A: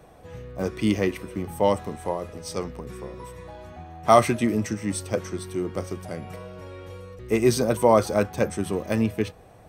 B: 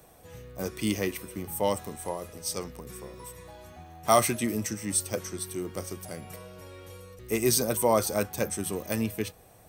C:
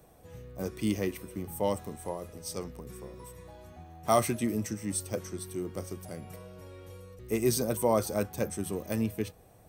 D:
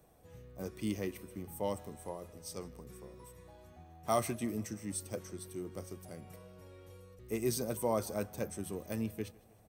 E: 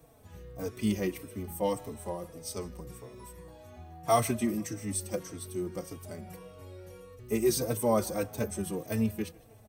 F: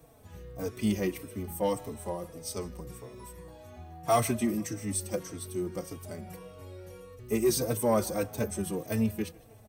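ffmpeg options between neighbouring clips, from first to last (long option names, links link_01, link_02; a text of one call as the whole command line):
ffmpeg -i in.wav -af "aemphasis=mode=production:type=75fm,volume=-5.5dB" out.wav
ffmpeg -i in.wav -af "tiltshelf=frequency=770:gain=3.5,volume=-3.5dB" out.wav
ffmpeg -i in.wav -af "aecho=1:1:157|314|471|628:0.0668|0.0361|0.0195|0.0105,volume=-6.5dB" out.wav
ffmpeg -i in.wav -filter_complex "[0:a]asplit=2[link_01][link_02];[link_02]adelay=3.9,afreqshift=-1.7[link_03];[link_01][link_03]amix=inputs=2:normalize=1,volume=9dB" out.wav
ffmpeg -i in.wav -af "asoftclip=type=tanh:threshold=-16dB,volume=1.5dB" out.wav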